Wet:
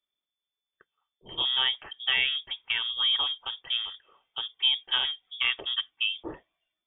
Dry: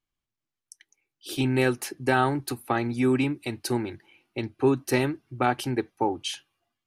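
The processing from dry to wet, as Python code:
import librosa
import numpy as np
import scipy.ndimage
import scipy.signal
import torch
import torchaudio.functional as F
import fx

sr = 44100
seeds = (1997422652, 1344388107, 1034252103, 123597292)

y = fx.freq_invert(x, sr, carrier_hz=3500)
y = y * 10.0 ** (-3.5 / 20.0)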